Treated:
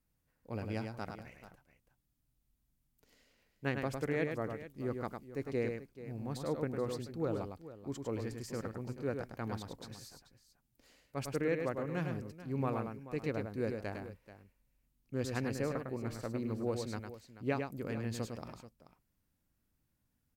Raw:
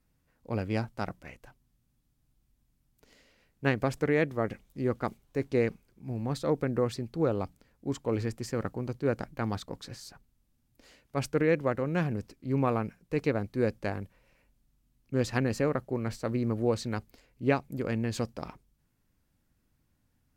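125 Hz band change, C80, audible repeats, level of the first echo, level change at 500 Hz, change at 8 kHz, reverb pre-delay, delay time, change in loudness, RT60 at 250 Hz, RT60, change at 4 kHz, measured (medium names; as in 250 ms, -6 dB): -7.5 dB, no reverb, 2, -5.5 dB, -7.5 dB, -5.0 dB, no reverb, 104 ms, -7.5 dB, no reverb, no reverb, -6.5 dB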